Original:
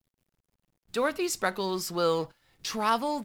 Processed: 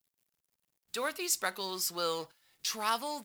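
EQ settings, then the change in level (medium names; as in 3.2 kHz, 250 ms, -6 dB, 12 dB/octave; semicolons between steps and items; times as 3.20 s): tilt EQ +3 dB/octave; -6.0 dB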